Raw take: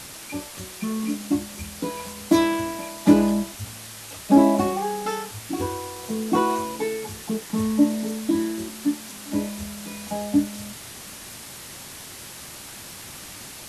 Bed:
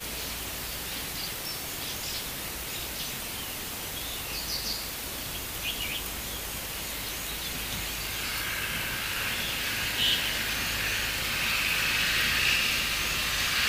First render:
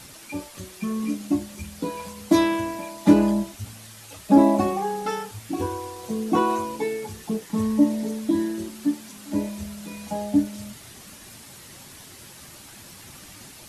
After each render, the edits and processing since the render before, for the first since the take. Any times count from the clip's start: denoiser 7 dB, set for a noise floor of -40 dBFS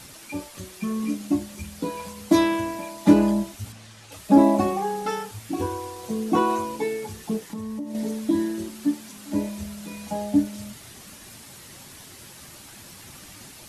3.72–4.12 air absorption 61 m; 7.5–7.95 compressor, threshold -30 dBFS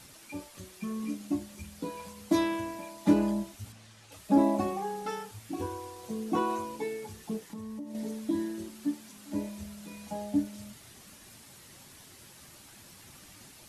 gain -8 dB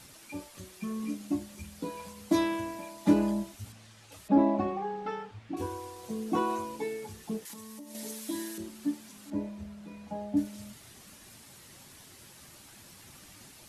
4.28–5.57 LPF 2800 Hz; 7.45–8.58 tilt +3.5 dB/oct; 9.3–10.37 LPF 1600 Hz 6 dB/oct

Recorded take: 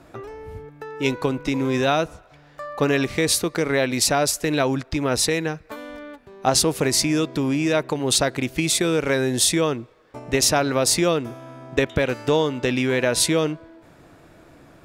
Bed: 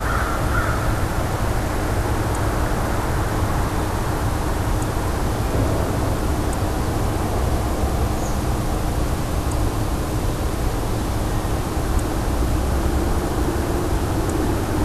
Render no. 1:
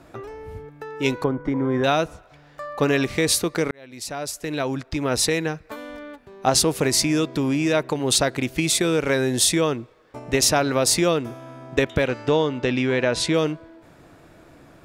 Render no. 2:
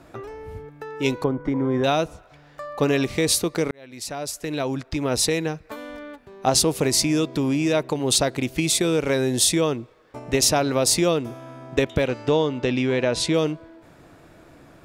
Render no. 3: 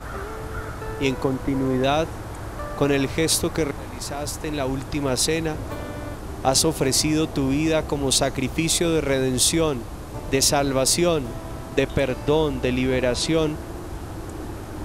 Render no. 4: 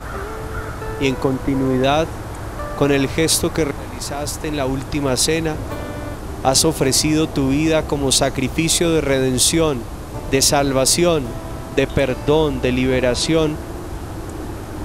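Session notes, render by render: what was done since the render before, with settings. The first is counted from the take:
1.24–1.84 polynomial smoothing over 41 samples; 3.71–5.26 fade in; 12.08–13.34 air absorption 84 m
dynamic EQ 1600 Hz, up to -5 dB, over -39 dBFS, Q 1.5
add bed -12.5 dB
gain +4.5 dB; limiter -3 dBFS, peak gain reduction 2 dB

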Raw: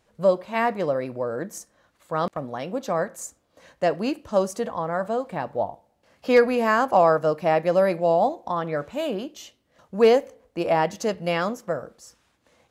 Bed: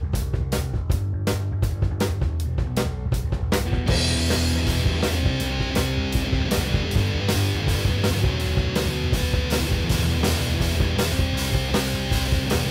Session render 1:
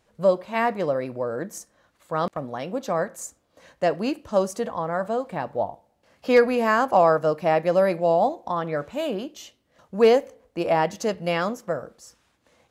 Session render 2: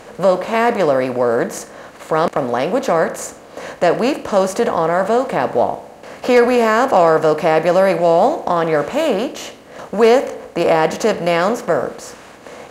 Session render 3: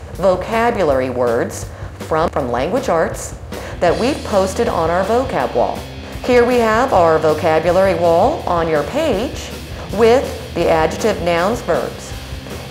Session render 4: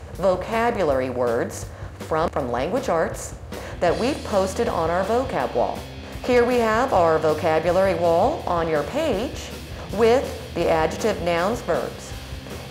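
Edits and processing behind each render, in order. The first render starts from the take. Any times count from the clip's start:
nothing audible
per-bin compression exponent 0.6; in parallel at -2 dB: limiter -11 dBFS, peak gain reduction 7 dB
add bed -7 dB
gain -6 dB

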